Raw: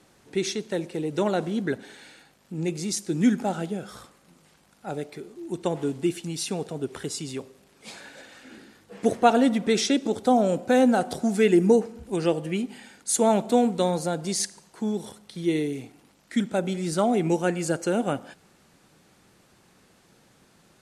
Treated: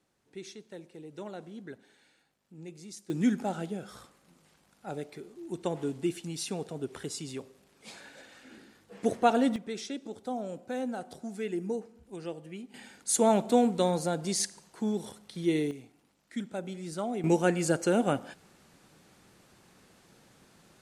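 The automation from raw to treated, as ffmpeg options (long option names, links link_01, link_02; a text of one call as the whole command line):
ffmpeg -i in.wav -af "asetnsamples=nb_out_samples=441:pad=0,asendcmd='3.1 volume volume -5.5dB;9.56 volume volume -15dB;12.74 volume volume -3dB;15.71 volume volume -11dB;17.24 volume volume -1dB',volume=-17dB" out.wav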